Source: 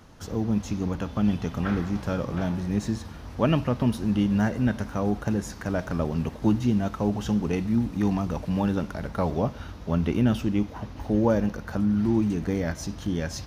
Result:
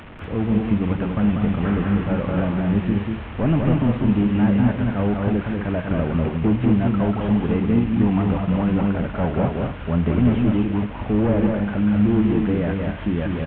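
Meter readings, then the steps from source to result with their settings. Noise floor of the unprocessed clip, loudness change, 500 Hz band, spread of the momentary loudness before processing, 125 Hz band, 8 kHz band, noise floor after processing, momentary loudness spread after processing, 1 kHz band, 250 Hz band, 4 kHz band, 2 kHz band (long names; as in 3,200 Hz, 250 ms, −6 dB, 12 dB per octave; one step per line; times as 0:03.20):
−41 dBFS, +5.5 dB, +4.5 dB, 7 LU, +6.5 dB, below −35 dB, −32 dBFS, 6 LU, +4.0 dB, +6.0 dB, can't be measured, +5.0 dB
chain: linear delta modulator 16 kbit/s, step −38.5 dBFS
multi-tap delay 192/242 ms −3.5/−8 dB
level +4.5 dB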